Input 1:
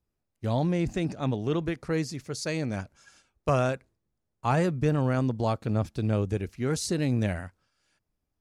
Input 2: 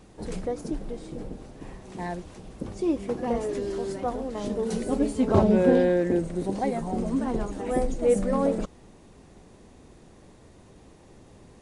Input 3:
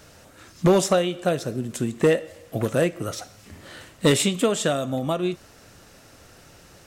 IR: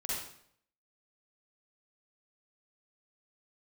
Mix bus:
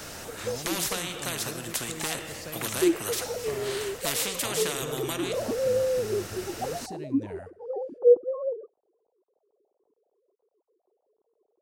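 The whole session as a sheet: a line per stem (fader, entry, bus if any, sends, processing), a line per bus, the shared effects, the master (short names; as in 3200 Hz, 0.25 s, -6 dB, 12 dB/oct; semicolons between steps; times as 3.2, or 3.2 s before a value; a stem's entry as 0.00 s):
-9.0 dB, 0.00 s, send -21 dB, compressor, threshold -29 dBFS, peak gain reduction 9.5 dB
-3.5 dB, 0.00 s, no send, sine-wave speech; gate -41 dBFS, range -8 dB; inverse Chebyshev low-pass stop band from 2200 Hz, stop band 50 dB
-2.5 dB, 0.00 s, send -22 dB, high shelf 8400 Hz +4.5 dB; spectral compressor 4:1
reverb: on, RT60 0.65 s, pre-delay 41 ms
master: dry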